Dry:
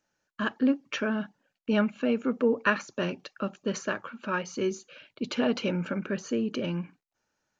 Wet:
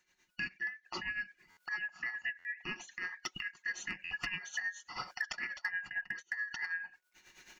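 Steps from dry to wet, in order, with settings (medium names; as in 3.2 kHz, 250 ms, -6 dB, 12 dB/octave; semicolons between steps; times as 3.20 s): four frequency bands reordered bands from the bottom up 2143; recorder AGC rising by 21 dB/s; 5.32–6.39 s: gate -29 dBFS, range -26 dB; bass shelf 260 Hz -9.5 dB; comb 5.5 ms, depth 43%; compression 20:1, threshold -37 dBFS, peak gain reduction 19.5 dB; tremolo 9.2 Hz, depth 69%; hard clipper -31 dBFS, distortion -28 dB; buffer glitch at 1.50/2.38/4.04 s, samples 512, times 5; trim +5 dB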